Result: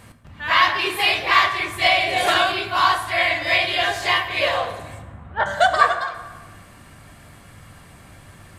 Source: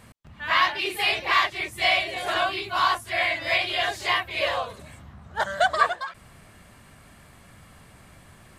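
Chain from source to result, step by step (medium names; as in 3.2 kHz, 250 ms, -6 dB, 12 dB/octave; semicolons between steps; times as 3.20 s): 5.02–5.46 s: low-pass 3 kHz 24 dB/octave; reverberation RT60 1.5 s, pre-delay 5 ms, DRR 6.5 dB; 1.86–2.52 s: three bands compressed up and down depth 100%; trim +4 dB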